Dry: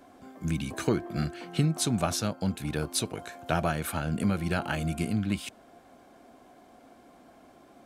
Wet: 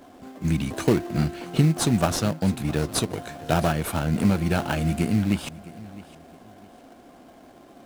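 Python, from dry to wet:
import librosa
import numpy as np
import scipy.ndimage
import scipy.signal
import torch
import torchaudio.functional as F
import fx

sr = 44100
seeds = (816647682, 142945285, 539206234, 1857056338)

p1 = fx.sample_hold(x, sr, seeds[0], rate_hz=2300.0, jitter_pct=20)
p2 = x + (p1 * 10.0 ** (-4.5 / 20.0))
p3 = fx.echo_feedback(p2, sr, ms=661, feedback_pct=29, wet_db=-19)
y = p3 * 10.0 ** (2.5 / 20.0)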